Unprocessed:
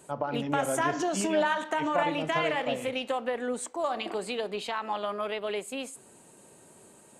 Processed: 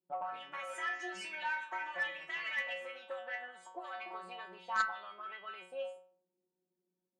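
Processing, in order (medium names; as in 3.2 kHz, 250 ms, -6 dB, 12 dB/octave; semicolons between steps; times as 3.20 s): gate -44 dBFS, range -24 dB; auto-wah 270–2000 Hz, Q 2.4, up, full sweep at -26 dBFS; inharmonic resonator 180 Hz, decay 0.53 s, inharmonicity 0.002; Chebyshev shaper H 3 -12 dB, 4 -38 dB, 5 -21 dB, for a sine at -36 dBFS; trim +18 dB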